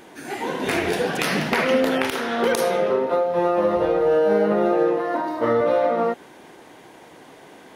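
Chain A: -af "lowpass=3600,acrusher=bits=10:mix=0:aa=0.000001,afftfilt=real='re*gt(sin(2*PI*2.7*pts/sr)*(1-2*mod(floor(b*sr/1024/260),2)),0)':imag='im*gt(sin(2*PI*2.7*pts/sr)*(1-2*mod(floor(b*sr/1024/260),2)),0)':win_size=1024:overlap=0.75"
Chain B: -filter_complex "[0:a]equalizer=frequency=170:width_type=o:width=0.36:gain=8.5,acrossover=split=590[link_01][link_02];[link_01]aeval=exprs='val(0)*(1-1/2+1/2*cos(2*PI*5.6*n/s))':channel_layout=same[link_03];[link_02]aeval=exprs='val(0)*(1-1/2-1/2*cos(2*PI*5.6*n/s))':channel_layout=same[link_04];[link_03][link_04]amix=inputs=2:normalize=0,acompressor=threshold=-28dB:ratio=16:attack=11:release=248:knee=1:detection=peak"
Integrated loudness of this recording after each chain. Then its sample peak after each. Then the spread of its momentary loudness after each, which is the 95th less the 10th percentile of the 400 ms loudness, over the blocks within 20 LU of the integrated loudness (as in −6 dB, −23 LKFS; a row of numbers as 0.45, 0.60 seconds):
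−24.5, −32.5 LKFS; −10.0, −11.5 dBFS; 7, 18 LU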